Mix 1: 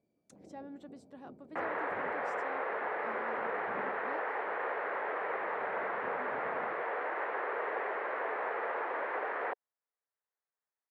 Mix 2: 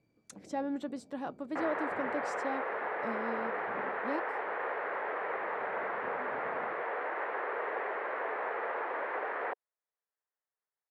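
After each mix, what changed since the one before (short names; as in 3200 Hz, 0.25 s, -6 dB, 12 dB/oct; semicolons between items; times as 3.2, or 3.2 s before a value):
speech +12.0 dB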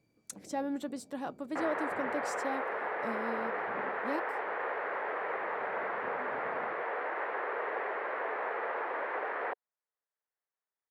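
speech: add bell 7000 Hz +2.5 dB 2.4 oct; master: remove air absorption 56 m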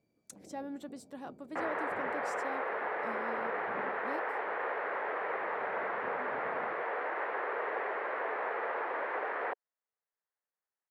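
speech -6.5 dB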